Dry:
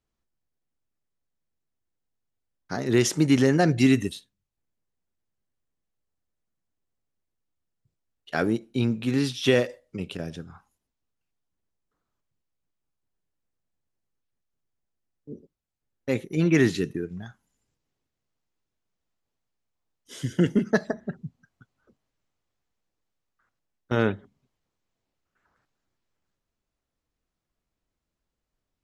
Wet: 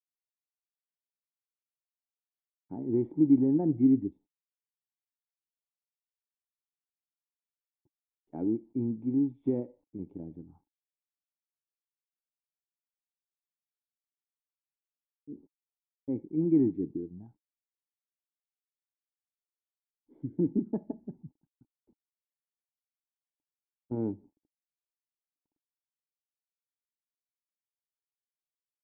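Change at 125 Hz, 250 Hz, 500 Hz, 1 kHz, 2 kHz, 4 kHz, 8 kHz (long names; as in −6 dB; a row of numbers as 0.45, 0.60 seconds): −10.5 dB, −3.0 dB, −9.5 dB, below −15 dB, below −40 dB, below −40 dB, below −40 dB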